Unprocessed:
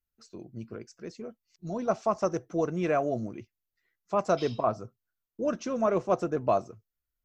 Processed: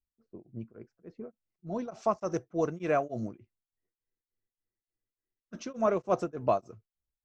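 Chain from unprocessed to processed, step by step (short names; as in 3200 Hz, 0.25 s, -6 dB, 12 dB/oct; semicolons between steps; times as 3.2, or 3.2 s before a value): low-pass opened by the level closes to 450 Hz, open at -26.5 dBFS; spectral freeze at 3.94, 1.60 s; beating tremolo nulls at 3.4 Hz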